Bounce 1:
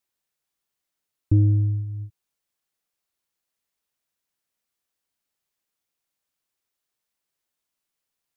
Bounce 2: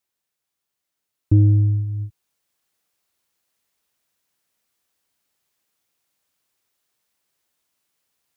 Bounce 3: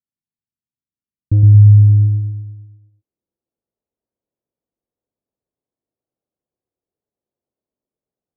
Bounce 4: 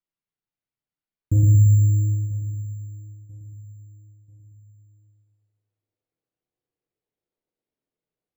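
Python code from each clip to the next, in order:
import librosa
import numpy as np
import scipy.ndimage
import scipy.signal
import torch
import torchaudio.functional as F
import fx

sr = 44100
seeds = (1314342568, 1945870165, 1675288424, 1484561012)

y1 = scipy.signal.sosfilt(scipy.signal.butter(2, 41.0, 'highpass', fs=sr, output='sos'), x)
y1 = fx.rider(y1, sr, range_db=10, speed_s=2.0)
y1 = F.gain(torch.from_numpy(y1), 4.0).numpy()
y2 = fx.leveller(y1, sr, passes=2)
y2 = fx.echo_feedback(y2, sr, ms=115, feedback_pct=57, wet_db=-3.0)
y2 = fx.filter_sweep_lowpass(y2, sr, from_hz=220.0, to_hz=490.0, start_s=1.48, end_s=3.78, q=1.3)
y2 = F.gain(torch.from_numpy(y2), -1.5).numpy()
y3 = np.repeat(y2[::6], 6)[:len(y2)]
y3 = fx.echo_feedback(y3, sr, ms=989, feedback_pct=36, wet_db=-19.0)
y3 = fx.room_shoebox(y3, sr, seeds[0], volume_m3=36.0, walls='mixed', distance_m=0.51)
y3 = F.gain(torch.from_numpy(y3), -6.0).numpy()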